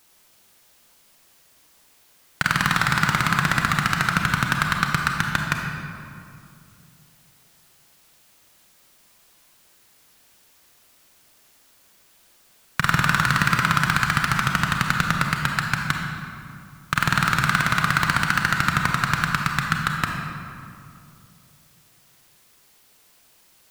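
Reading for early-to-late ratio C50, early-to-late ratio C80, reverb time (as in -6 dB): 2.0 dB, 3.5 dB, 2.5 s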